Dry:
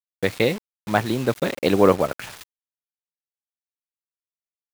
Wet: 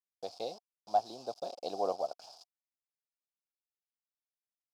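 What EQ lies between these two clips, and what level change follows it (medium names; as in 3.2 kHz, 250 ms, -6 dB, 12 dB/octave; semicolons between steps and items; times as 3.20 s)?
two resonant band-passes 1.9 kHz, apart 2.8 oct; -3.0 dB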